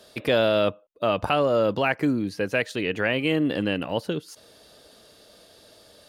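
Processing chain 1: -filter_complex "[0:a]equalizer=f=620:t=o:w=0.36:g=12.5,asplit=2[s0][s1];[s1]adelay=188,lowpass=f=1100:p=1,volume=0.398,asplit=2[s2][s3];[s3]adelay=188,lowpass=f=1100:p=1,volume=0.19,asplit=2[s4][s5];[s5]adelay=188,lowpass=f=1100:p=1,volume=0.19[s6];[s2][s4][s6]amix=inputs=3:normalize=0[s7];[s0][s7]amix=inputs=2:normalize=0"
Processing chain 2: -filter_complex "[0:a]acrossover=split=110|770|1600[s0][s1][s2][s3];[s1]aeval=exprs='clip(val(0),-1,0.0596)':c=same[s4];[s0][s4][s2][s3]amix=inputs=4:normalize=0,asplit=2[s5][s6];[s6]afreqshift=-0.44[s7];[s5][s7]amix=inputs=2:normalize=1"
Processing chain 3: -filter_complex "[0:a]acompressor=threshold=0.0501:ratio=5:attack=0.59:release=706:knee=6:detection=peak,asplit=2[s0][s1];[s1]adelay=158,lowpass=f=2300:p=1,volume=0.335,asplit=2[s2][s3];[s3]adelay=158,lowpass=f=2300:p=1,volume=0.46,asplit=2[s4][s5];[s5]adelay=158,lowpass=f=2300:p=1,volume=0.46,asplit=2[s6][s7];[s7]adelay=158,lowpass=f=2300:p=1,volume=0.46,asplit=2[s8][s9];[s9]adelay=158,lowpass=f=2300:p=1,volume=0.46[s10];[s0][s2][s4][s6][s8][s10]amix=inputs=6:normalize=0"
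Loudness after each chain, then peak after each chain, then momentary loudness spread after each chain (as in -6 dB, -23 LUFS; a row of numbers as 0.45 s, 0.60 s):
-18.0 LUFS, -28.5 LUFS, -34.0 LUFS; -3.5 dBFS, -13.0 dBFS, -20.0 dBFS; 11 LU, 8 LU, 19 LU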